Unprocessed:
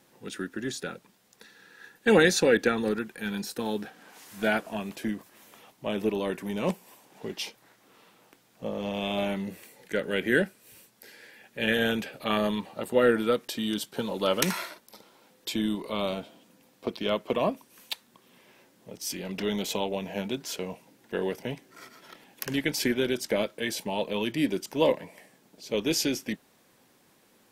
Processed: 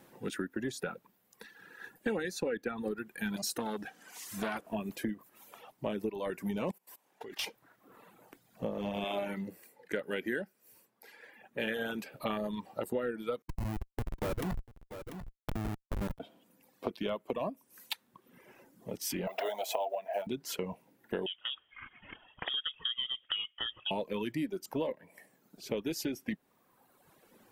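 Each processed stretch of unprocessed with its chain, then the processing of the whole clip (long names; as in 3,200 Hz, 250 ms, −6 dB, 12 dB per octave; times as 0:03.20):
0:03.36–0:04.61: parametric band 6,500 Hz +11 dB 1.7 octaves + saturating transformer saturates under 2,100 Hz
0:06.71–0:07.45: high-shelf EQ 5,600 Hz +11 dB + output level in coarse steps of 16 dB + mid-hump overdrive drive 10 dB, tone 3,500 Hz, clips at −20 dBFS
0:09.04–0:12.12: low-shelf EQ 150 Hz −11.5 dB + one half of a high-frequency compander decoder only
0:13.42–0:16.20: comparator with hysteresis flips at −24 dBFS + single-tap delay 691 ms −14 dB
0:19.27–0:20.27: one scale factor per block 5 bits + high-pass with resonance 670 Hz, resonance Q 7.8
0:21.26–0:23.91: treble cut that deepens with the level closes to 1,000 Hz, closed at −27.5 dBFS + voice inversion scrambler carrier 3,500 Hz
whole clip: reverb reduction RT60 1.3 s; parametric band 5,400 Hz −8 dB 2.2 octaves; downward compressor 8 to 1, threshold −36 dBFS; level +4.5 dB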